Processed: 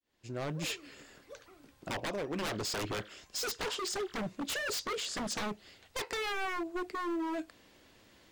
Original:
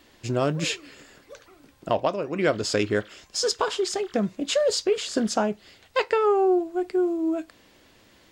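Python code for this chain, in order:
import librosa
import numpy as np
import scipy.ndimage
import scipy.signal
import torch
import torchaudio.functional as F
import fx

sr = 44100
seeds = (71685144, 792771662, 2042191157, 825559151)

y = fx.fade_in_head(x, sr, length_s=0.94)
y = 10.0 ** (-25.0 / 20.0) * (np.abs((y / 10.0 ** (-25.0 / 20.0) + 3.0) % 4.0 - 2.0) - 1.0)
y = y * 10.0 ** (-5.0 / 20.0)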